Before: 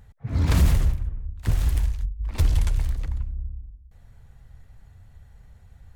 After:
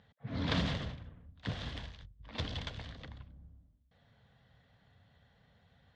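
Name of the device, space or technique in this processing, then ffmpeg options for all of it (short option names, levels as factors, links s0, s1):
kitchen radio: -af "highpass=210,equalizer=f=360:t=q:w=4:g=-10,equalizer=f=880:t=q:w=4:g=-5,equalizer=f=1300:t=q:w=4:g=-4,equalizer=f=2400:t=q:w=4:g=-5,equalizer=f=3400:t=q:w=4:g=6,lowpass=f=4400:w=0.5412,lowpass=f=4400:w=1.3066,volume=0.794"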